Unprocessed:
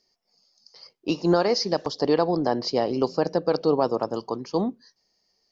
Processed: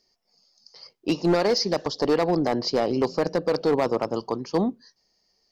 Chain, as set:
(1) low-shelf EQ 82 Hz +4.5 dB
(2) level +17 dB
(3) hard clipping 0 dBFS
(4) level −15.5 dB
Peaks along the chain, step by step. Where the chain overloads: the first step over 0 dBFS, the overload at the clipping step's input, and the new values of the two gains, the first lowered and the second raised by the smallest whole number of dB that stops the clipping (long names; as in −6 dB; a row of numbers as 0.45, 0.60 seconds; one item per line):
−9.5, +7.5, 0.0, −15.5 dBFS
step 2, 7.5 dB
step 2 +9 dB, step 4 −7.5 dB